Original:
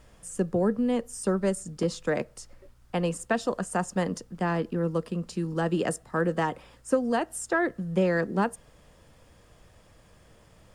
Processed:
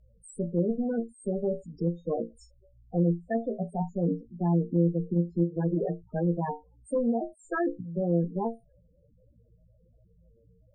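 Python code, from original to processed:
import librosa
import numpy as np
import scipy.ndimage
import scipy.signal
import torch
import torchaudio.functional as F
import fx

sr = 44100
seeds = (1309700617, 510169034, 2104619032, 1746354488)

y = fx.cheby_harmonics(x, sr, harmonics=(3, 6, 7), levels_db=(-21, -21, -30), full_scale_db=-11.5)
y = fx.level_steps(y, sr, step_db=17)
y = fx.room_flutter(y, sr, wall_m=3.0, rt60_s=0.23)
y = fx.spec_topn(y, sr, count=8)
y = fx.env_lowpass_down(y, sr, base_hz=580.0, full_db=-29.5)
y = y * 10.0 ** (7.5 / 20.0)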